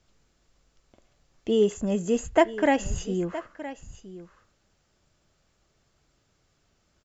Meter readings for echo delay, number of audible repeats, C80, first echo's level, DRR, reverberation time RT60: 968 ms, 1, no reverb, -15.0 dB, no reverb, no reverb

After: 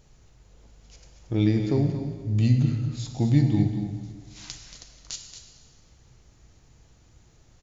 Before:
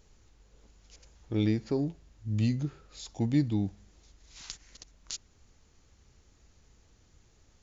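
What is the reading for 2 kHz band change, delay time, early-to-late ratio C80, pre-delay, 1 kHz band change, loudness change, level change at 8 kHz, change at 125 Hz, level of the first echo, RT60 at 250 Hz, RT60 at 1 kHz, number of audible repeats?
+4.5 dB, 229 ms, 5.5 dB, 4 ms, +6.0 dB, +7.0 dB, no reading, +9.5 dB, -10.0 dB, 1.7 s, 1.8 s, 1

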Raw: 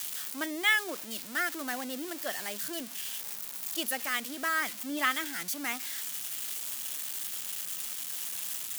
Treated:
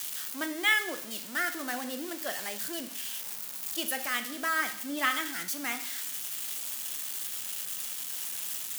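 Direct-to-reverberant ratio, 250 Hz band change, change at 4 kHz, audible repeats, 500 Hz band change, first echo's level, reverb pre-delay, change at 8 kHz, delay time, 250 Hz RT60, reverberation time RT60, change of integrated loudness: 8.0 dB, +0.5 dB, +0.5 dB, no echo, +0.5 dB, no echo, 6 ms, +0.5 dB, no echo, 0.65 s, 0.65 s, +0.5 dB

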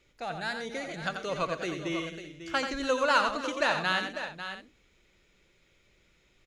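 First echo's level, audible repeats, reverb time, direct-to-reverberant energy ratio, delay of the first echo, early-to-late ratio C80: -7.0 dB, 5, no reverb, no reverb, 87 ms, no reverb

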